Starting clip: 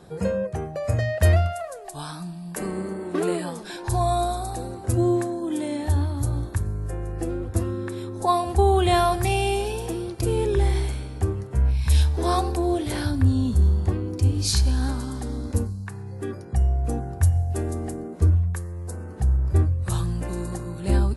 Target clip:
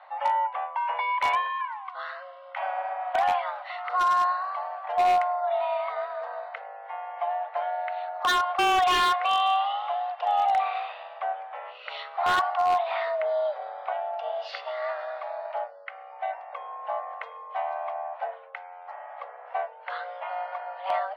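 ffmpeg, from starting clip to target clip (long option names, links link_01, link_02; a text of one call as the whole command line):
ffmpeg -i in.wav -af "highpass=frequency=260:width_type=q:width=0.5412,highpass=frequency=260:width_type=q:width=1.307,lowpass=frequency=3000:width_type=q:width=0.5176,lowpass=frequency=3000:width_type=q:width=0.7071,lowpass=frequency=3000:width_type=q:width=1.932,afreqshift=370,aeval=exprs='0.126*(abs(mod(val(0)/0.126+3,4)-2)-1)':channel_layout=same,volume=1.5dB" out.wav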